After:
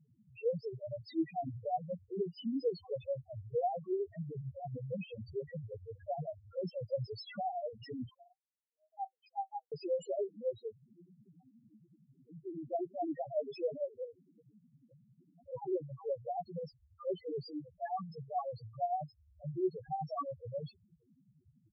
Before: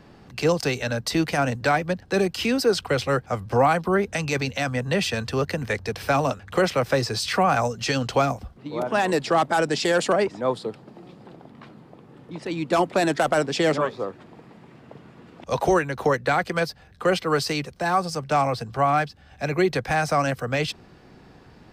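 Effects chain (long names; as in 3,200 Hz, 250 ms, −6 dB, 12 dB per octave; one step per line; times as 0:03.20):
shaped tremolo triangle 11 Hz, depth 80%
spectral peaks only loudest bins 1
0:08.09–0:09.72: Chebyshev high-pass with heavy ripple 750 Hz, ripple 9 dB
level −2.5 dB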